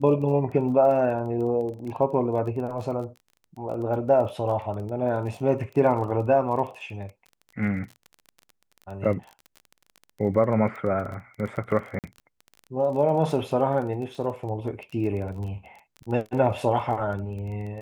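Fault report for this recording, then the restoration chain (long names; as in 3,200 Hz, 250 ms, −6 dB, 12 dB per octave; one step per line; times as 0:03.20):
surface crackle 24 per second −34 dBFS
0:11.99–0:12.04: drop-out 48 ms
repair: click removal
repair the gap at 0:11.99, 48 ms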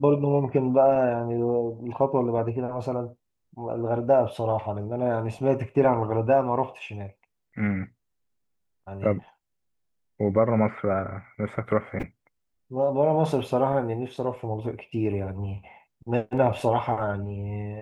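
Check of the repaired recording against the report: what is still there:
none of them is left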